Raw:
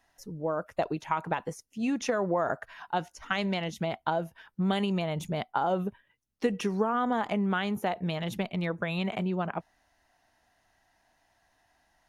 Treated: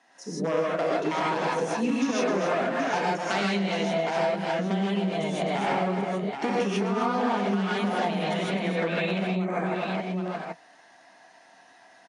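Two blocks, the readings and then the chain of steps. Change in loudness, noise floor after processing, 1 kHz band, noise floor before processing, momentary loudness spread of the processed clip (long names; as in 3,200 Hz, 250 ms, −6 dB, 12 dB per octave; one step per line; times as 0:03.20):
+4.0 dB, −55 dBFS, +4.0 dB, −71 dBFS, 4 LU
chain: wavefolder on the positive side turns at −25 dBFS
Butterworth low-pass 9,900 Hz 72 dB per octave
in parallel at +2 dB: brickwall limiter −23.5 dBFS, peak gain reduction 9.5 dB
on the sum: high-shelf EQ 5,900 Hz −5.5 dB
on a send: multi-tap delay 258/775 ms −7/−12 dB
on the sum: gain on a spectral selection 0:09.29–0:09.61, 2,500–5,900 Hz −14 dB
reverb whose tail is shaped and stops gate 180 ms rising, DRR −7 dB
downward compressor 6 to 1, threshold −22 dBFS, peak gain reduction 14.5 dB
high-pass filter 200 Hz 24 dB per octave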